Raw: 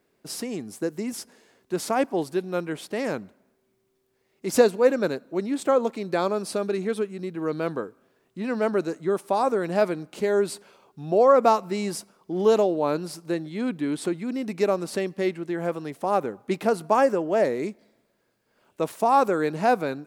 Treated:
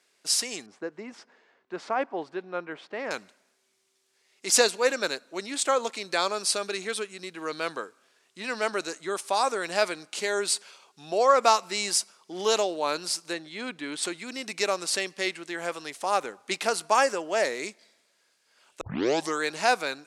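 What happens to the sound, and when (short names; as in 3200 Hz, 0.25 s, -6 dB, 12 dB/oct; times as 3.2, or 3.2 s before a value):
0.66–3.11 LPF 1400 Hz
13.33–14.03 high shelf 4300 Hz -9.5 dB
18.81 tape start 0.59 s
whole clip: weighting filter ITU-R 468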